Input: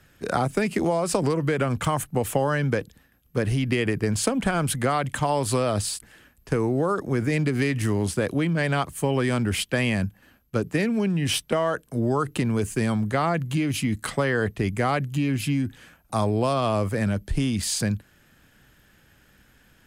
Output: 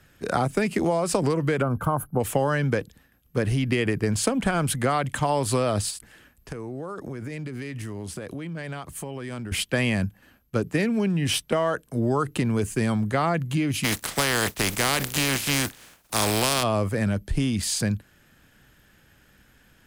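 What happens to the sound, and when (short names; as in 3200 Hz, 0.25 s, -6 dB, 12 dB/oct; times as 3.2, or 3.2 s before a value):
1.62–2.2 spectral gain 1600–10000 Hz -18 dB
5.9–9.52 compressor, threshold -31 dBFS
13.83–16.62 spectral contrast lowered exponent 0.37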